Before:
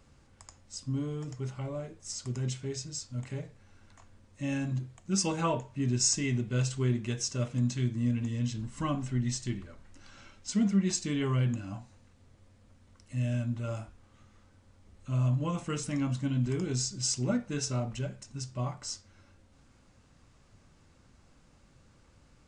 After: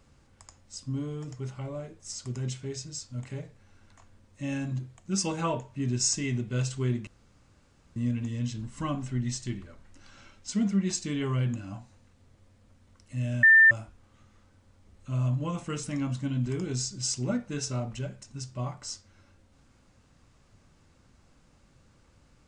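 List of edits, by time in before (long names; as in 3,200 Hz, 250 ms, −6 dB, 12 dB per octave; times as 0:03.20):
0:07.07–0:07.96: fill with room tone
0:13.43–0:13.71: beep over 1,790 Hz −13 dBFS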